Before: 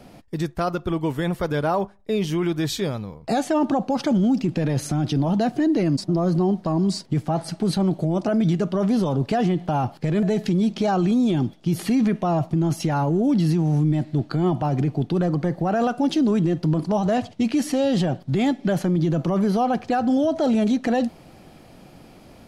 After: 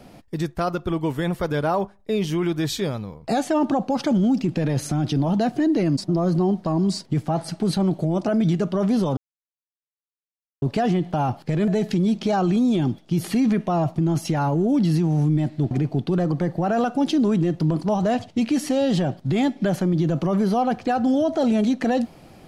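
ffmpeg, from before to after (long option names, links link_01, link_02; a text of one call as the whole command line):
ffmpeg -i in.wav -filter_complex "[0:a]asplit=3[link_01][link_02][link_03];[link_01]atrim=end=9.17,asetpts=PTS-STARTPTS,afade=type=out:start_time=9.166:duration=0.004:curve=hsin,apad=pad_dur=1.45[link_04];[link_02]atrim=start=9.17:end=14.262,asetpts=PTS-STARTPTS,afade=type=in:duration=0.004:curve=hsin[link_05];[link_03]atrim=start=14.738[link_06];[link_04][link_05]concat=n=2:v=0:a=1[link_07];[link_07][link_06]acrossfade=duration=0.004:curve1=hsin:curve2=hsin" out.wav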